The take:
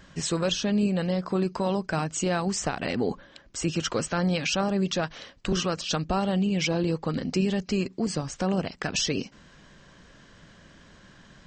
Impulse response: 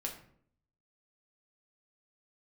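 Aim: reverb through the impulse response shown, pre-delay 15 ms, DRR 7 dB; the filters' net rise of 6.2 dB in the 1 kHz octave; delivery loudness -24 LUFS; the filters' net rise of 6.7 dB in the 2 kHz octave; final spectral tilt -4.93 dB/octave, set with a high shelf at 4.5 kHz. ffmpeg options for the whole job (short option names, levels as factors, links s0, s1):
-filter_complex "[0:a]equalizer=f=1000:t=o:g=6.5,equalizer=f=2000:t=o:g=8,highshelf=f=4500:g=-5.5,asplit=2[s0][s1];[1:a]atrim=start_sample=2205,adelay=15[s2];[s1][s2]afir=irnorm=-1:irlink=0,volume=0.422[s3];[s0][s3]amix=inputs=2:normalize=0,volume=1.06"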